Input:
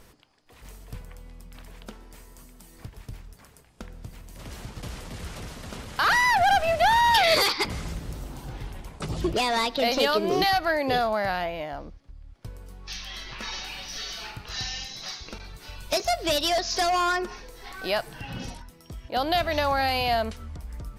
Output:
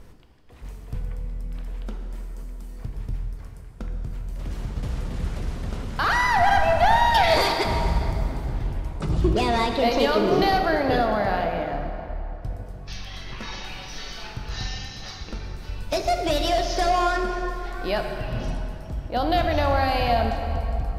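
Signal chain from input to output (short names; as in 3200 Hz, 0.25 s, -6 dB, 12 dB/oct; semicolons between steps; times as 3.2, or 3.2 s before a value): tilt -2 dB/oct; plate-style reverb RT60 3.2 s, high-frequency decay 0.65×, DRR 3.5 dB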